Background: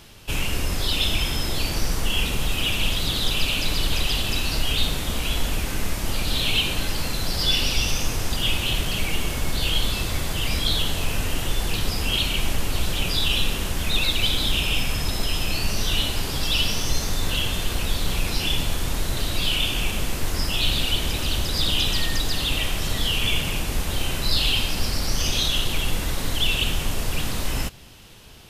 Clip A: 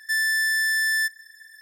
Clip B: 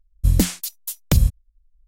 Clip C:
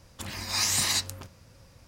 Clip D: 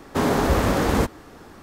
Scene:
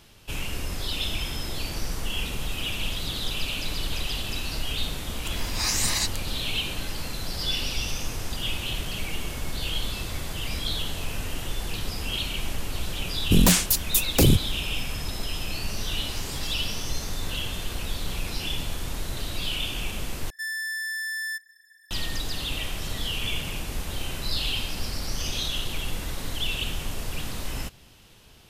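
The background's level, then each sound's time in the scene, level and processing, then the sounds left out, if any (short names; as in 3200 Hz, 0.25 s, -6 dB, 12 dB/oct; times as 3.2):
background -6.5 dB
5.06 add C
13.07 add B -10 dB + sine folder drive 14 dB, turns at -2.5 dBFS
15.54 add C -15.5 dB
20.3 replace with A -8.5 dB
not used: D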